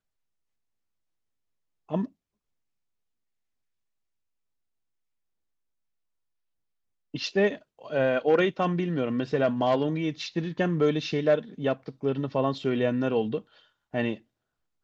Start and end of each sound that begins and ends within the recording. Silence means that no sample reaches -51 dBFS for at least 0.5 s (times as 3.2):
1.89–2.08
7.14–14.21